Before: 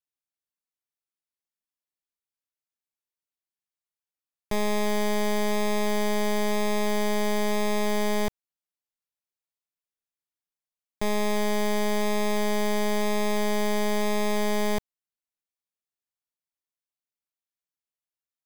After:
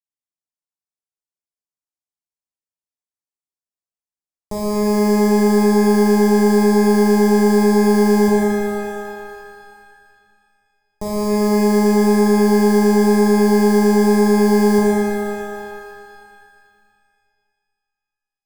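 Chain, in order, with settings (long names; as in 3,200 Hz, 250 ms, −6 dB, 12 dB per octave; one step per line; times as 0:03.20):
downsampling to 22,050 Hz
leveller curve on the samples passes 5
flat-topped bell 2,300 Hz −15 dB
on a send: echo with a time of its own for lows and highs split 790 Hz, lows 148 ms, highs 105 ms, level −15.5 dB
on the sum: reverb with rising layers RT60 2.4 s, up +12 semitones, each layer −8 dB, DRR −5.5 dB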